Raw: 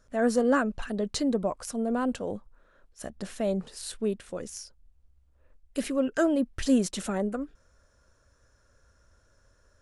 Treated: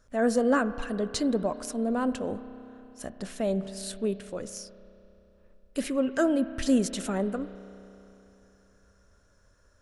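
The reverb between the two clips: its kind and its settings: spring tank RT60 3.3 s, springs 31 ms, chirp 70 ms, DRR 13 dB

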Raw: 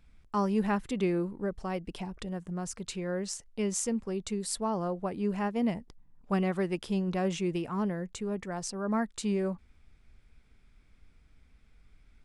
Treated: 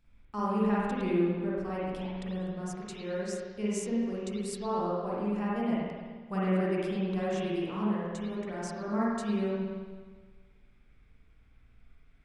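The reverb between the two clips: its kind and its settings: spring tank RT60 1.5 s, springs 43/52 ms, chirp 70 ms, DRR -7.5 dB; gain -8 dB

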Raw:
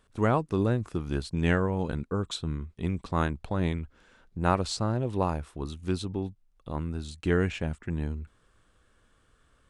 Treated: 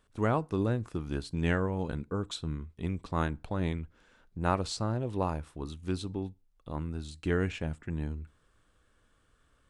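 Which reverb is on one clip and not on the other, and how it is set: FDN reverb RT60 0.31 s, low-frequency decay 1×, high-frequency decay 0.8×, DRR 18.5 dB; gain -3.5 dB

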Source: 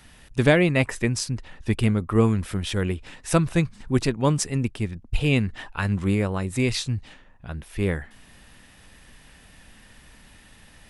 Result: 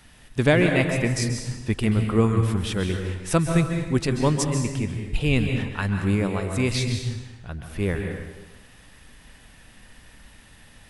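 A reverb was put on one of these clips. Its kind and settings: plate-style reverb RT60 1.1 s, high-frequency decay 0.85×, pre-delay 0.12 s, DRR 4 dB; gain -1 dB

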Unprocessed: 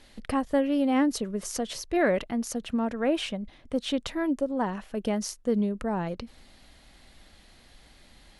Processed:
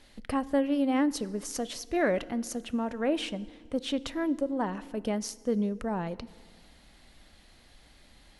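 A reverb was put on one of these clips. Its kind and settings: FDN reverb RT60 1.8 s, low-frequency decay 1.25×, high-frequency decay 0.75×, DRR 17.5 dB; gain -2.5 dB

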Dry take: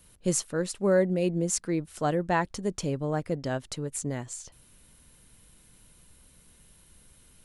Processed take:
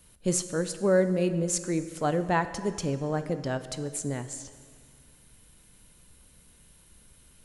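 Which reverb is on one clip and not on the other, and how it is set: plate-style reverb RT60 2 s, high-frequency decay 0.85×, DRR 10.5 dB

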